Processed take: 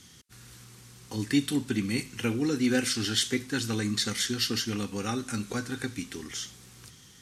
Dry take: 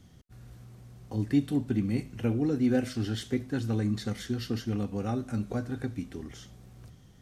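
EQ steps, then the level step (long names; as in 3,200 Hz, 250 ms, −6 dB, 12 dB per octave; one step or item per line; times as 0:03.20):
low-pass filter 9,900 Hz 12 dB per octave
spectral tilt +3.5 dB per octave
parametric band 650 Hz −14.5 dB 0.42 octaves
+7.0 dB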